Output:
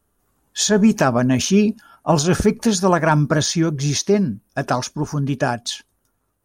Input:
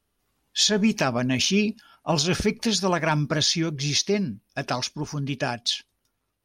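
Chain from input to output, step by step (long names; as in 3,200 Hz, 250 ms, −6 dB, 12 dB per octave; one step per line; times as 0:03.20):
flat-topped bell 3,300 Hz −10 dB
level +7.5 dB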